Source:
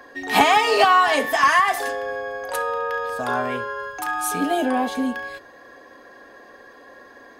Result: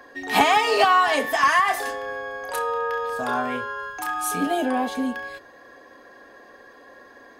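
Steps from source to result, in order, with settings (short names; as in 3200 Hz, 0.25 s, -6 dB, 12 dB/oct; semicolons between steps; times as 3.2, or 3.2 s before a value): 1.63–4.47 doubler 28 ms -8 dB; gain -2 dB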